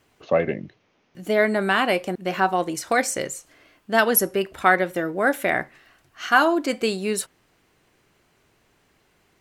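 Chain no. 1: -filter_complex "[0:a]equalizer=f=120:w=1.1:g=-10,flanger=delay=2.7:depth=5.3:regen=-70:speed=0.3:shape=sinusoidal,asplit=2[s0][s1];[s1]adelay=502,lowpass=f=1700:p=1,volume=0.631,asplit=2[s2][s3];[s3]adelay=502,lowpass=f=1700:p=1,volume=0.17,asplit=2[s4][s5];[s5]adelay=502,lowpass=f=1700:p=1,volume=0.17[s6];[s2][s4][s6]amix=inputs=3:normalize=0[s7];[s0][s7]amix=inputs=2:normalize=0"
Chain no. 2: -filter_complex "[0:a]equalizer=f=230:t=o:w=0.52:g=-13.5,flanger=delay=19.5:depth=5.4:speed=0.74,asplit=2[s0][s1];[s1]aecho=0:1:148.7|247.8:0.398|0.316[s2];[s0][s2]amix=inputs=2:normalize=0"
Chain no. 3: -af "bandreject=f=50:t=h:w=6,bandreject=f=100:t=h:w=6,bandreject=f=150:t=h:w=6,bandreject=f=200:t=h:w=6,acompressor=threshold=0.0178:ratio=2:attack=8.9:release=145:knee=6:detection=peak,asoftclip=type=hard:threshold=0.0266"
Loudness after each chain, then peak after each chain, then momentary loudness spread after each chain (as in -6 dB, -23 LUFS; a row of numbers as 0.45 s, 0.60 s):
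-26.5 LUFS, -25.0 LUFS, -36.0 LUFS; -7.0 dBFS, -6.5 dBFS, -31.5 dBFS; 11 LU, 14 LU, 10 LU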